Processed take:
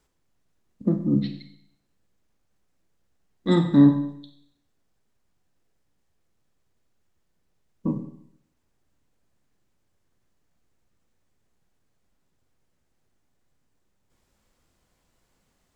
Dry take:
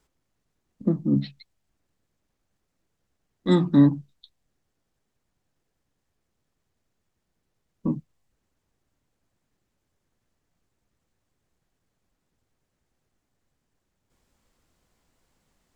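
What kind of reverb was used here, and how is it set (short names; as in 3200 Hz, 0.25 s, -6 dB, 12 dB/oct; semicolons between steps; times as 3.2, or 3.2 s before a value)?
Schroeder reverb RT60 0.7 s, combs from 31 ms, DRR 6.5 dB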